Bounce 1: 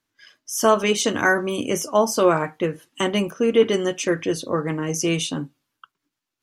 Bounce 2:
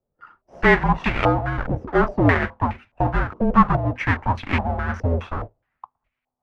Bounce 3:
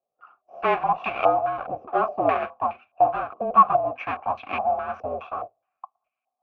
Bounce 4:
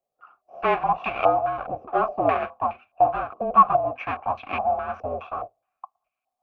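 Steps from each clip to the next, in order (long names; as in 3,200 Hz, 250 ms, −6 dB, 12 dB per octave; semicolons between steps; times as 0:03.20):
each half-wave held at its own peak; frequency shifter −250 Hz; low-pass on a step sequencer 4.8 Hz 510–2,300 Hz; level −4.5 dB
formant filter a; level +8.5 dB
low-shelf EQ 76 Hz +10.5 dB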